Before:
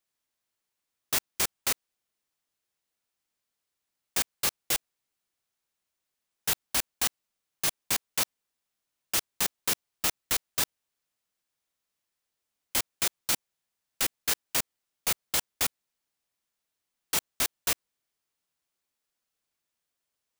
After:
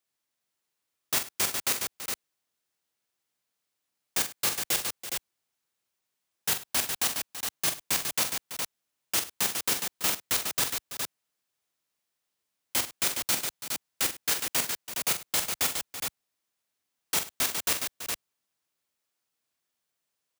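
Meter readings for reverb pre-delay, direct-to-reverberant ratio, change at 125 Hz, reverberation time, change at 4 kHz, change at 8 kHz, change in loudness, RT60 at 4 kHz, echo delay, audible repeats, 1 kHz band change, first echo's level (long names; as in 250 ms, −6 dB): no reverb audible, no reverb audible, +1.0 dB, no reverb audible, +1.5 dB, +2.0 dB, +0.5 dB, no reverb audible, 44 ms, 4, +2.0 dB, −8.5 dB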